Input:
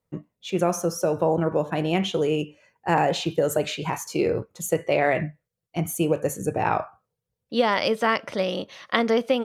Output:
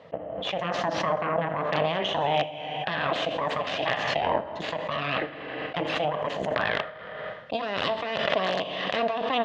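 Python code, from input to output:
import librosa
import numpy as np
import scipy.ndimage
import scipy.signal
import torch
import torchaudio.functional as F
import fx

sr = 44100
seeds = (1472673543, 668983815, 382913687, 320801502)

y = fx.cheby_harmonics(x, sr, harmonics=(3, 8), levels_db=(-13, -9), full_scale_db=-3.0)
y = fx.over_compress(y, sr, threshold_db=-25.0, ratio=-1.0)
y = fx.echo_feedback(y, sr, ms=80, feedback_pct=48, wet_db=-19.5)
y = fx.rev_schroeder(y, sr, rt60_s=0.7, comb_ms=27, drr_db=12.0)
y = (np.mod(10.0 ** (10.0 / 20.0) * y + 1.0, 2.0) - 1.0) / 10.0 ** (10.0 / 20.0)
y = fx.high_shelf(y, sr, hz=2100.0, db=11.0)
y = 10.0 ** (-1.5 / 20.0) * np.tanh(y / 10.0 ** (-1.5 / 20.0))
y = fx.cabinet(y, sr, low_hz=220.0, low_slope=12, high_hz=2700.0, hz=(230.0, 360.0, 640.0, 910.0, 1400.0, 2300.0), db=(-5, -8, 7, -5, -8, -9))
y = fx.pre_swell(y, sr, db_per_s=29.0)
y = y * 10.0 ** (-1.0 / 20.0)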